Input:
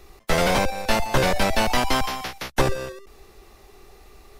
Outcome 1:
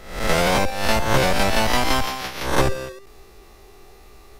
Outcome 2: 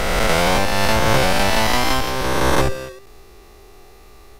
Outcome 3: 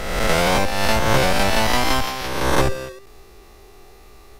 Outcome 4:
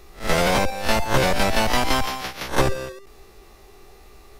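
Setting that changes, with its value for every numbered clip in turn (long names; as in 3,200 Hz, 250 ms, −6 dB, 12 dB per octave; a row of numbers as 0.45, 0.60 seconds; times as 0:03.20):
peak hold with a rise ahead of every peak, rising 60 dB in: 0.64, 2.9, 1.37, 0.3 seconds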